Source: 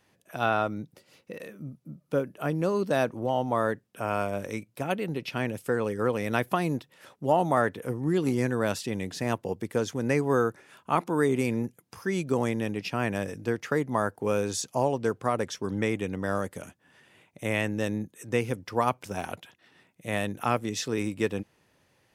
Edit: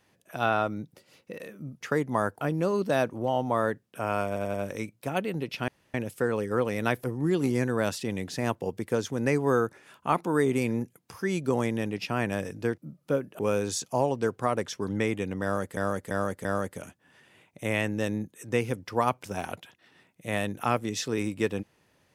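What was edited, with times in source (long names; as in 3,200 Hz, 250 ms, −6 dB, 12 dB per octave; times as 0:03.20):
0:01.81–0:02.42: swap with 0:13.61–0:14.21
0:04.28: stutter 0.09 s, 4 plays
0:05.42: splice in room tone 0.26 s
0:06.52–0:07.87: remove
0:16.25–0:16.59: repeat, 4 plays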